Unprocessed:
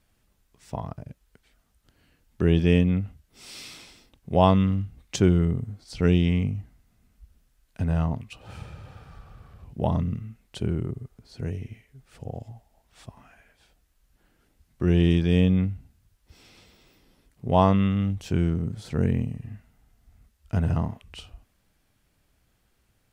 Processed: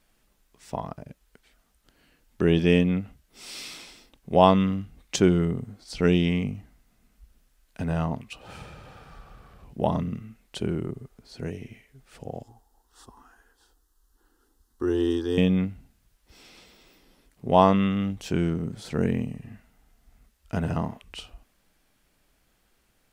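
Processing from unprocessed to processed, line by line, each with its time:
0:12.43–0:15.38: phaser with its sweep stopped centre 620 Hz, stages 6
whole clip: parametric band 90 Hz −12 dB 1.3 octaves; level +3 dB

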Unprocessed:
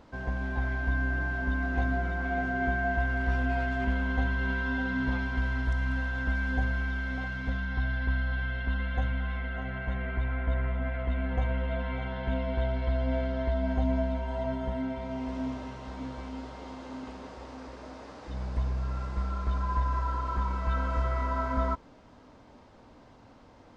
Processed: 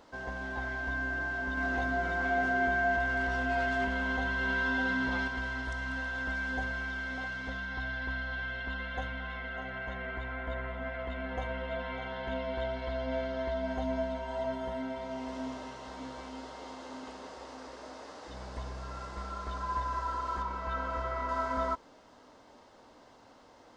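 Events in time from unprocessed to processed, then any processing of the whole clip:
0:01.57–0:05.28: envelope flattener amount 50%
0:20.42–0:21.29: low-pass filter 3,200 Hz 6 dB per octave
whole clip: bass and treble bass −12 dB, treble +5 dB; notch filter 2,400 Hz, Q 13

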